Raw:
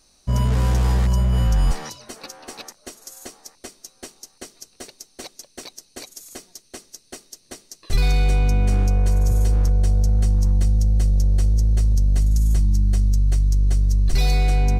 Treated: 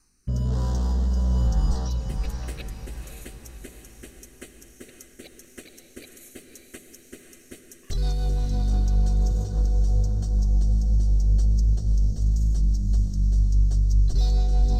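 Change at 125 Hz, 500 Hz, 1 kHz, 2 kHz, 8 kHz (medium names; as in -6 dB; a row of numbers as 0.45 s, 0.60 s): -4.5 dB, -6.5 dB, -9.0 dB, -12.5 dB, -8.0 dB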